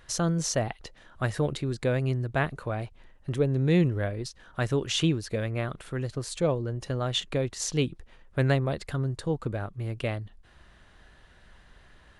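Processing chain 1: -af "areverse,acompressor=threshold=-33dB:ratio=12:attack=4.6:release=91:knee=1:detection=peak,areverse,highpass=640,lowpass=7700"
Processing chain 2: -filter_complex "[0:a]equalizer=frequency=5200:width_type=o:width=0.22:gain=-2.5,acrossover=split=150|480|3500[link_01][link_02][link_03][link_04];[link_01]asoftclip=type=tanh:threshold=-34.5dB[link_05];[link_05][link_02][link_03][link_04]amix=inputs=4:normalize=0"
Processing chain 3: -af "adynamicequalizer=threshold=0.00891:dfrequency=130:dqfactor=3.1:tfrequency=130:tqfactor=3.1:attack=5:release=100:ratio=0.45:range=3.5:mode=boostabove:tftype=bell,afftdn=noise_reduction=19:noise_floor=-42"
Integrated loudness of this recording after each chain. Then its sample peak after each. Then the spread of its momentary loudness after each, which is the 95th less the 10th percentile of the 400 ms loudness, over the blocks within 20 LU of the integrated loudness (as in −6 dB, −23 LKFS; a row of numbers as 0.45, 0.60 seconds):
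−43.5, −30.0, −26.0 LKFS; −22.5, −11.5, −8.5 dBFS; 20, 10, 11 LU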